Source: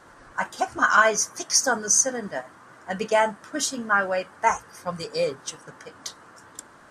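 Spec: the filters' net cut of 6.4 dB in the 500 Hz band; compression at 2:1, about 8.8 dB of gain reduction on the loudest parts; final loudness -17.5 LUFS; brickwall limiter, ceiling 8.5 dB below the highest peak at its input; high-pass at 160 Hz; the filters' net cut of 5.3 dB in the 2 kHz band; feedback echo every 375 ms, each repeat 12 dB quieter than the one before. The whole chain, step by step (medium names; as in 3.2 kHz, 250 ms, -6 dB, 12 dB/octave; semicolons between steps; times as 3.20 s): high-pass 160 Hz; peaking EQ 500 Hz -8 dB; peaking EQ 2 kHz -7.5 dB; compression 2:1, threshold -32 dBFS; peak limiter -24 dBFS; feedback delay 375 ms, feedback 25%, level -12 dB; trim +18.5 dB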